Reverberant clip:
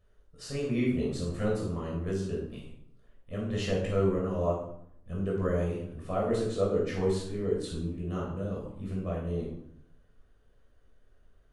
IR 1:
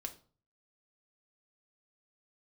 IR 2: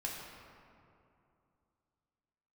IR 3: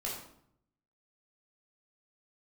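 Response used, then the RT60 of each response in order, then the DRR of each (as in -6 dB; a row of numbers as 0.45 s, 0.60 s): 3; 0.40 s, 2.7 s, 0.70 s; 4.0 dB, -3.0 dB, -4.5 dB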